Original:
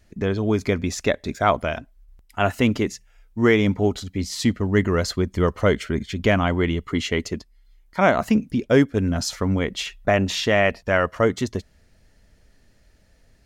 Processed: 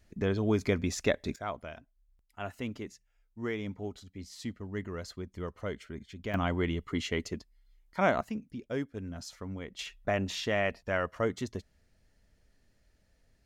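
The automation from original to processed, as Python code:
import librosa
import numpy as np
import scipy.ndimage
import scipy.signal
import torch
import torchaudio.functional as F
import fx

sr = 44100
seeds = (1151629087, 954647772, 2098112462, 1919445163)

y = fx.gain(x, sr, db=fx.steps((0.0, -6.5), (1.36, -18.0), (6.34, -9.0), (8.21, -18.0), (9.79, -11.0)))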